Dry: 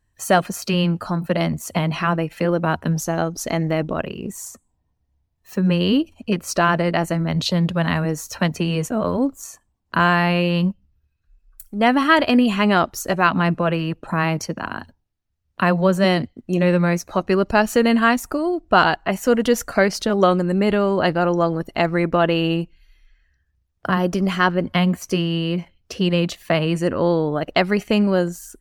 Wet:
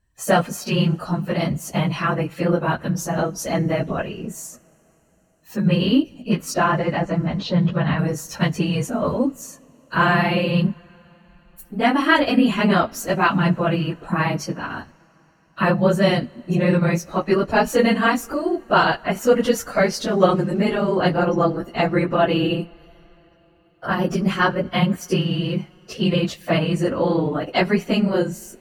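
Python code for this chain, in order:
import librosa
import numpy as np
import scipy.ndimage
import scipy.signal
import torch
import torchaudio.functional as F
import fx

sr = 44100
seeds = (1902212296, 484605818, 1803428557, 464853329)

y = fx.phase_scramble(x, sr, seeds[0], window_ms=50)
y = fx.air_absorb(y, sr, metres=180.0, at=(6.54, 7.99))
y = fx.rev_double_slope(y, sr, seeds[1], early_s=0.32, late_s=4.9, knee_db=-18, drr_db=18.5)
y = y * librosa.db_to_amplitude(-1.0)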